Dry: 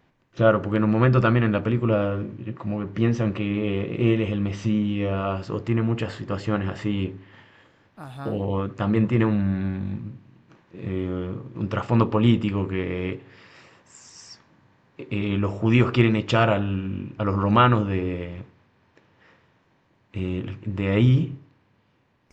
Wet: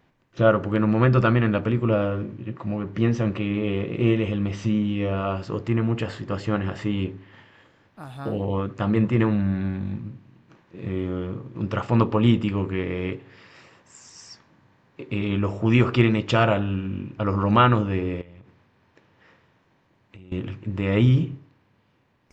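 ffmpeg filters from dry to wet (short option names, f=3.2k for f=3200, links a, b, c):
-filter_complex "[0:a]asettb=1/sr,asplit=3[a][b][c];[a]atrim=end=18.214[d];[b]atrim=start=18.21:end=20.32,asetpts=PTS-STARTPTS,afade=t=in:d=0.004:c=qsin,afade=t=out:st=2.106:d=0.004:c=qsin,acompressor=threshold=-42dB:ratio=8:attack=3.2:release=140:knee=1:detection=peak[e];[c]atrim=start=20.316[f];[d][e]acrossfade=d=0.004:c1=hsin:c2=qsin[g];[g][f]acrossfade=d=0.004:c1=qsin:c2=hsin"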